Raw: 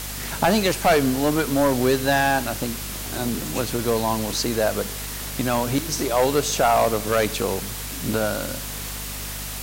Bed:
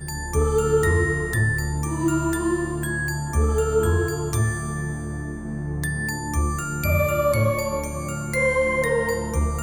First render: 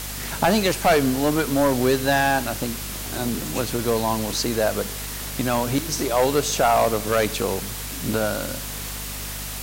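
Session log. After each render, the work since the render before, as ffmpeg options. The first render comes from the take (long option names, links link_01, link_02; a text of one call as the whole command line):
ffmpeg -i in.wav -af anull out.wav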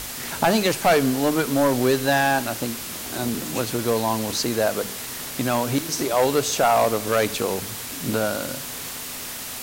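ffmpeg -i in.wav -af "bandreject=frequency=50:width_type=h:width=6,bandreject=frequency=100:width_type=h:width=6,bandreject=frequency=150:width_type=h:width=6,bandreject=frequency=200:width_type=h:width=6" out.wav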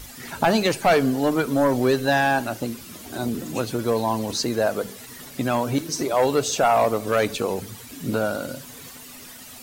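ffmpeg -i in.wav -af "afftdn=noise_reduction=12:noise_floor=-33" out.wav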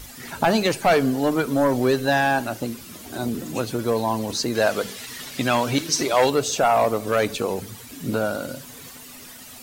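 ffmpeg -i in.wav -filter_complex "[0:a]asettb=1/sr,asplit=3[link_01][link_02][link_03];[link_01]atrim=end=4.554[link_04];[link_02]atrim=start=4.55:end=6.3,asetpts=PTS-STARTPTS,afade=type=in:duration=0.004:curve=qsin,afade=type=out:start_time=1.746:duration=0.004:curve=qsin,equalizer=frequency=3300:width_type=o:width=2.6:gain=9[link_05];[link_03]atrim=start=6.296[link_06];[link_04][link_05]acrossfade=duration=0.004:curve1=hsin:curve2=qsin[link_07];[link_07][link_06]acrossfade=duration=0.004:curve1=qsin:curve2=hsin" out.wav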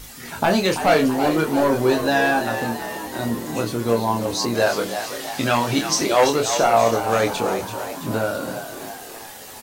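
ffmpeg -i in.wav -filter_complex "[0:a]asplit=2[link_01][link_02];[link_02]adelay=26,volume=-4.5dB[link_03];[link_01][link_03]amix=inputs=2:normalize=0,asplit=8[link_04][link_05][link_06][link_07][link_08][link_09][link_10][link_11];[link_05]adelay=333,afreqshift=79,volume=-9.5dB[link_12];[link_06]adelay=666,afreqshift=158,volume=-14.4dB[link_13];[link_07]adelay=999,afreqshift=237,volume=-19.3dB[link_14];[link_08]adelay=1332,afreqshift=316,volume=-24.1dB[link_15];[link_09]adelay=1665,afreqshift=395,volume=-29dB[link_16];[link_10]adelay=1998,afreqshift=474,volume=-33.9dB[link_17];[link_11]adelay=2331,afreqshift=553,volume=-38.8dB[link_18];[link_04][link_12][link_13][link_14][link_15][link_16][link_17][link_18]amix=inputs=8:normalize=0" out.wav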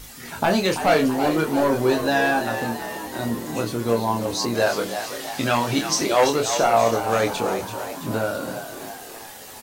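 ffmpeg -i in.wav -af "volume=-1.5dB" out.wav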